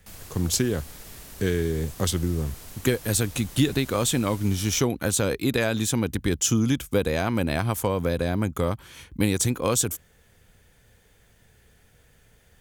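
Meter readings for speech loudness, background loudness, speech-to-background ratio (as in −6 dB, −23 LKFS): −25.0 LKFS, −42.5 LKFS, 17.5 dB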